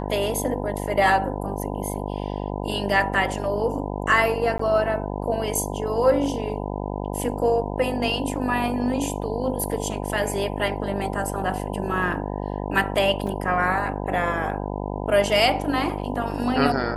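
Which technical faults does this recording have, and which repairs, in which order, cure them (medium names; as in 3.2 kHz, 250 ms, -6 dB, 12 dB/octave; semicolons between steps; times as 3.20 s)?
buzz 50 Hz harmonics 20 -29 dBFS
4.58–4.59 s: dropout 14 ms
13.27 s: dropout 3.8 ms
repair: de-hum 50 Hz, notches 20; interpolate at 4.58 s, 14 ms; interpolate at 13.27 s, 3.8 ms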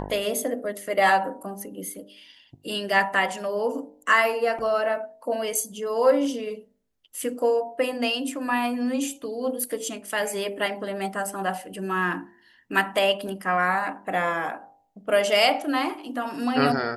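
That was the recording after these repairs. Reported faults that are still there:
nothing left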